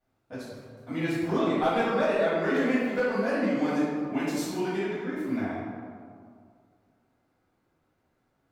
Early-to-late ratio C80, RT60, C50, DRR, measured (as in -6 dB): 0.0 dB, 2.2 s, -3.0 dB, -14.0 dB